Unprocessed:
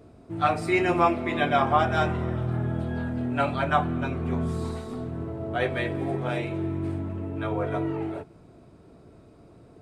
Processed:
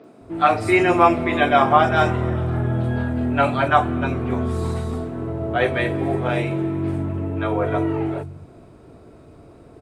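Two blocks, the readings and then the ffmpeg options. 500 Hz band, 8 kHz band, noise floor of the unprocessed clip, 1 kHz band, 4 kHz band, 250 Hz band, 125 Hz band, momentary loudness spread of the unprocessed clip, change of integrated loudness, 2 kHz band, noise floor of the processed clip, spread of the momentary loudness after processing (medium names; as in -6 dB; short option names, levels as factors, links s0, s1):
+7.0 dB, no reading, -52 dBFS, +7.0 dB, +5.5 dB, +6.0 dB, +5.5 dB, 11 LU, +6.5 dB, +7.0 dB, -47 dBFS, 11 LU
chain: -filter_complex "[0:a]acrossover=split=170|4900[s0][s1][s2];[s2]adelay=40[s3];[s0]adelay=210[s4];[s4][s1][s3]amix=inputs=3:normalize=0,volume=2.24"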